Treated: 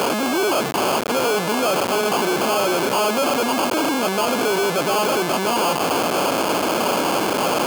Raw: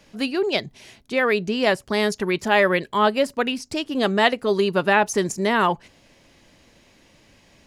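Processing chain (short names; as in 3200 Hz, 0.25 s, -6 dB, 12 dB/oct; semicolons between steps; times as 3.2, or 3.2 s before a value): infinite clipping; sample-rate reducer 1900 Hz, jitter 0%; HPF 310 Hz 12 dB/oct; gain +5.5 dB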